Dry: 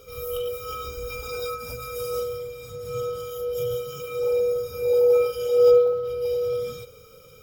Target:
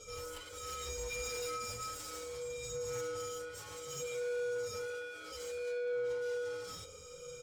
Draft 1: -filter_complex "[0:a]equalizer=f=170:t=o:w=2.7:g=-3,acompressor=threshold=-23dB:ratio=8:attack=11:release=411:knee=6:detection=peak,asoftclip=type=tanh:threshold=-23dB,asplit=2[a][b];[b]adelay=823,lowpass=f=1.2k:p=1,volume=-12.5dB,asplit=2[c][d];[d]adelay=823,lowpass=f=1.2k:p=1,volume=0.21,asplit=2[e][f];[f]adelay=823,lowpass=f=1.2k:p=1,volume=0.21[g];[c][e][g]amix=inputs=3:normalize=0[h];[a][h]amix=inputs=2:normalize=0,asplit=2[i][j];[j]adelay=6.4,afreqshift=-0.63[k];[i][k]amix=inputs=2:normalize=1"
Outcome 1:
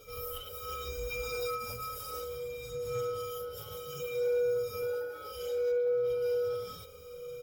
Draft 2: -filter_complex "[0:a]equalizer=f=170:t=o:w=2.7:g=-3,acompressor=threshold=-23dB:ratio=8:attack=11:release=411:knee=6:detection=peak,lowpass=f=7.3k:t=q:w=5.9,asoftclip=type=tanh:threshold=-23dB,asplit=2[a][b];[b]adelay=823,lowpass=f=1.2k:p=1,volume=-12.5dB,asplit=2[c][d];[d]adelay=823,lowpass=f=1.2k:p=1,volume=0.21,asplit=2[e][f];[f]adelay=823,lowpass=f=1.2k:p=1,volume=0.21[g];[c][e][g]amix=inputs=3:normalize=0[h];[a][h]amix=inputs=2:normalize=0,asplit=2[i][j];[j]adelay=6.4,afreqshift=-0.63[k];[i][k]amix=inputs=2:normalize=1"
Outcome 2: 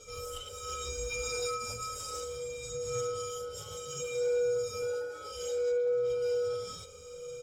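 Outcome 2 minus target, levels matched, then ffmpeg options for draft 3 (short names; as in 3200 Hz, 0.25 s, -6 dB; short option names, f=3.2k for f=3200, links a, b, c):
soft clip: distortion -12 dB
-filter_complex "[0:a]equalizer=f=170:t=o:w=2.7:g=-3,acompressor=threshold=-23dB:ratio=8:attack=11:release=411:knee=6:detection=peak,lowpass=f=7.3k:t=q:w=5.9,asoftclip=type=tanh:threshold=-34.5dB,asplit=2[a][b];[b]adelay=823,lowpass=f=1.2k:p=1,volume=-12.5dB,asplit=2[c][d];[d]adelay=823,lowpass=f=1.2k:p=1,volume=0.21,asplit=2[e][f];[f]adelay=823,lowpass=f=1.2k:p=1,volume=0.21[g];[c][e][g]amix=inputs=3:normalize=0[h];[a][h]amix=inputs=2:normalize=0,asplit=2[i][j];[j]adelay=6.4,afreqshift=-0.63[k];[i][k]amix=inputs=2:normalize=1"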